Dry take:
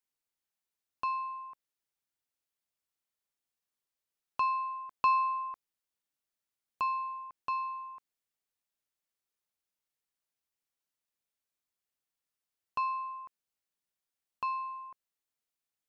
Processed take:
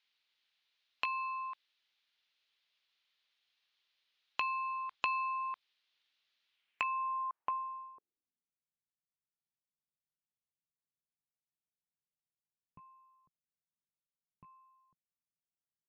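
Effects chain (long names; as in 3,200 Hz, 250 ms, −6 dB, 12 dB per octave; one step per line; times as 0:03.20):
loose part that buzzes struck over −58 dBFS, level −31 dBFS
treble cut that deepens with the level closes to 2,800 Hz, closed at −29.5 dBFS
parametric band 2,700 Hz +13.5 dB 2.5 octaves
low-pass filter sweep 3,900 Hz → 160 Hz, 0:06.46–0:08.63
downward compressor 3 to 1, threshold −36 dBFS, peak gain reduction 16 dB
low-shelf EQ 220 Hz −8.5 dB
MP3 64 kbit/s 16,000 Hz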